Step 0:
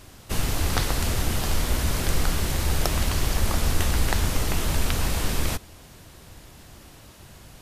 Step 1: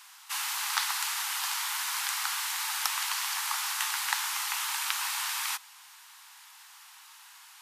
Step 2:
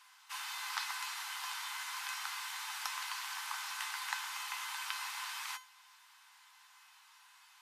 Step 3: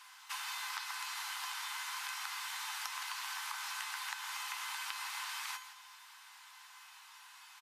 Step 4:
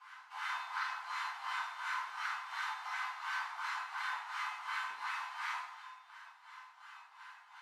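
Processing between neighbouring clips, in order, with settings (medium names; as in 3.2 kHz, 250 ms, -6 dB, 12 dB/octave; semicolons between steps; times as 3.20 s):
steep high-pass 840 Hz 72 dB/octave
treble shelf 6.1 kHz -10 dB; feedback comb 510 Hz, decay 0.3 s, harmonics all, mix 80%; trim +5 dB
compression, threshold -44 dBFS, peak gain reduction 12.5 dB; delay 165 ms -12.5 dB; trim +5.5 dB
wah-wah 2.8 Hz 340–1600 Hz, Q 2; two-slope reverb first 0.65 s, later 1.8 s, from -17 dB, DRR -9 dB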